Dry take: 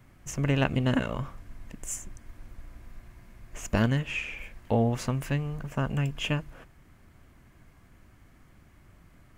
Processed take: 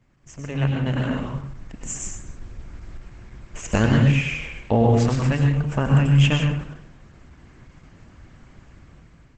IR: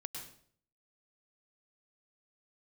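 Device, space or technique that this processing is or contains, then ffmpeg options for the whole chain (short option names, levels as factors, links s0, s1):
speakerphone in a meeting room: -filter_complex "[0:a]asplit=3[s0][s1][s2];[s0]afade=t=out:st=2.05:d=0.02[s3];[s1]equalizer=f=1700:w=0.58:g=-2,afade=t=in:st=2.05:d=0.02,afade=t=out:st=2.73:d=0.02[s4];[s2]afade=t=in:st=2.73:d=0.02[s5];[s3][s4][s5]amix=inputs=3:normalize=0[s6];[1:a]atrim=start_sample=2205[s7];[s6][s7]afir=irnorm=-1:irlink=0,dynaudnorm=f=390:g=5:m=4.47,volume=0.841" -ar 48000 -c:a libopus -b:a 12k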